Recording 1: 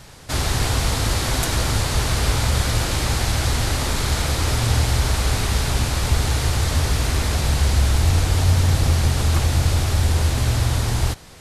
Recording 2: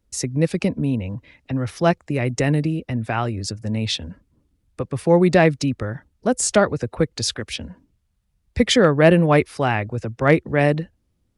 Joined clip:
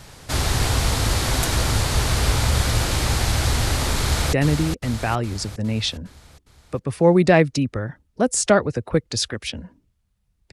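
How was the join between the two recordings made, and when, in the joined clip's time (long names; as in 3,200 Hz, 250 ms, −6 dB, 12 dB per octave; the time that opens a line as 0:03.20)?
recording 1
0:04.00–0:04.33: delay throw 410 ms, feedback 55%, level −6 dB
0:04.33: continue with recording 2 from 0:02.39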